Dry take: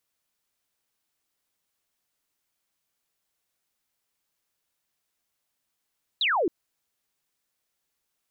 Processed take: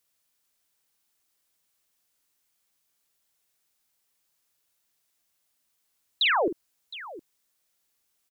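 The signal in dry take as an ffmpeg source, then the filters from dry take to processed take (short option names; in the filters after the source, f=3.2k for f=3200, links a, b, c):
-f lavfi -i "aevalsrc='0.0891*clip(t/0.002,0,1)*clip((0.27-t)/0.002,0,1)*sin(2*PI*4100*0.27/log(300/4100)*(exp(log(300/4100)*t/0.27)-1))':d=0.27:s=44100"
-filter_complex "[0:a]highshelf=f=3.8k:g=5.5,asplit=2[a][b];[b]aecho=0:1:47|714:0.398|0.15[c];[a][c]amix=inputs=2:normalize=0"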